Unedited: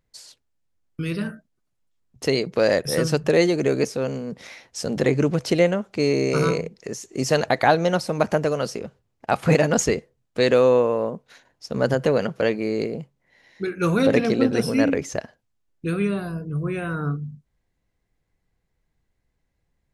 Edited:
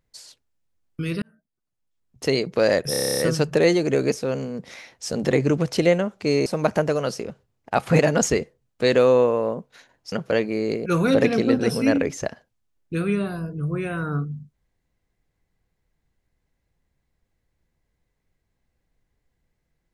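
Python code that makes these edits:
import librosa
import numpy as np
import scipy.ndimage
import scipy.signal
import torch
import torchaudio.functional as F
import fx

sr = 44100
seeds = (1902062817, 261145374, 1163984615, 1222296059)

y = fx.edit(x, sr, fx.fade_in_span(start_s=1.22, length_s=1.11),
    fx.stutter(start_s=2.91, slice_s=0.03, count=10),
    fx.cut(start_s=6.19, length_s=1.83),
    fx.cut(start_s=11.68, length_s=0.54),
    fx.cut(start_s=12.96, length_s=0.82), tone=tone)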